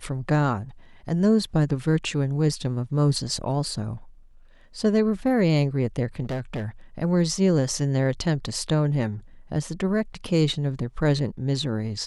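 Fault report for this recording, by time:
6.23–6.68 s: clipped -25 dBFS

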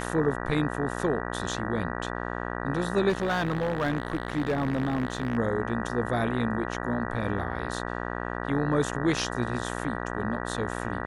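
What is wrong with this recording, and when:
buzz 60 Hz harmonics 32 -33 dBFS
3.09–5.37 s: clipped -22 dBFS

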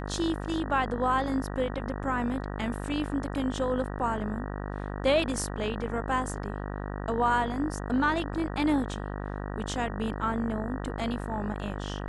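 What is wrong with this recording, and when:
buzz 50 Hz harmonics 38 -35 dBFS

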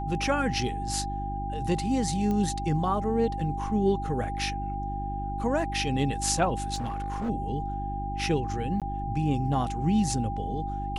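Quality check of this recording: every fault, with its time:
hum 50 Hz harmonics 7 -34 dBFS
whine 800 Hz -33 dBFS
2.31 s: pop -19 dBFS
6.74–7.30 s: clipped -27 dBFS
8.80–8.82 s: dropout 17 ms

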